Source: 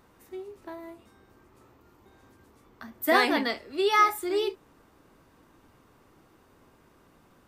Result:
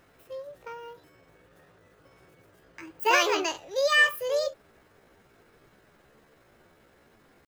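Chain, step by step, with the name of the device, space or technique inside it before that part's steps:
chipmunk voice (pitch shifter +6 semitones)

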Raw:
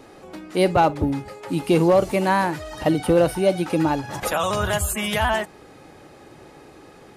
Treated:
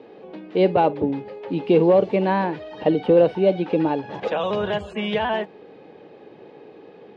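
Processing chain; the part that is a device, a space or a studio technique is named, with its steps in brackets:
kitchen radio (loudspeaker in its box 170–3,500 Hz, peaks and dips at 200 Hz +5 dB, 450 Hz +10 dB, 1,300 Hz −9 dB, 2,000 Hz −4 dB)
level −1.5 dB

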